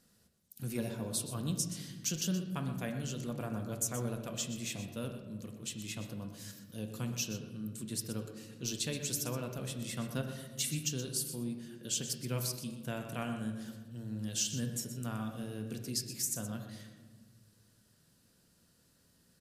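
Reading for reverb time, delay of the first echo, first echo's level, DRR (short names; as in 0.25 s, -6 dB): 1.4 s, 0.123 s, -11.0 dB, 4.0 dB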